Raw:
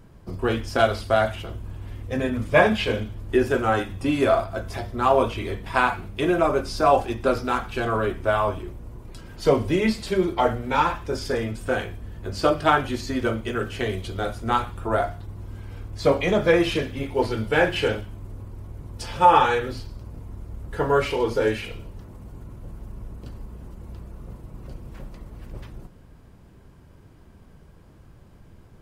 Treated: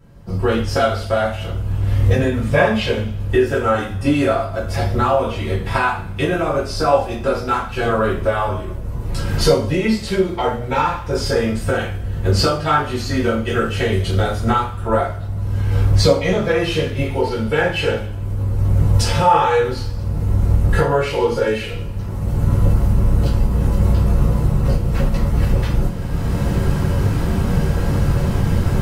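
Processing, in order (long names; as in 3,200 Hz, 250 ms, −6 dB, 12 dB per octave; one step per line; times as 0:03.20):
camcorder AGC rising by 19 dB per second
coupled-rooms reverb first 0.33 s, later 1.6 s, from −25 dB, DRR −6.5 dB
level −6 dB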